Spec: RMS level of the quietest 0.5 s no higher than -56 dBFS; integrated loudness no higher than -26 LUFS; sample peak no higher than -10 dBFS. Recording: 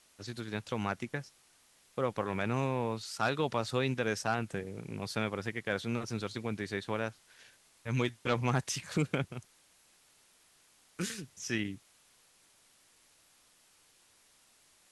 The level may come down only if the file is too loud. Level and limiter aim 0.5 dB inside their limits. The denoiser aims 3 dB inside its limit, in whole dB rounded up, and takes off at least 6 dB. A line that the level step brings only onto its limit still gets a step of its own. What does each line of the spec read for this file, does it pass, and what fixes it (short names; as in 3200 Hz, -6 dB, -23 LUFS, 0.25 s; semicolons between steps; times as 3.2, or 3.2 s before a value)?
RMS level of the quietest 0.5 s -66 dBFS: OK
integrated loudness -35.0 LUFS: OK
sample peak -14.5 dBFS: OK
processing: none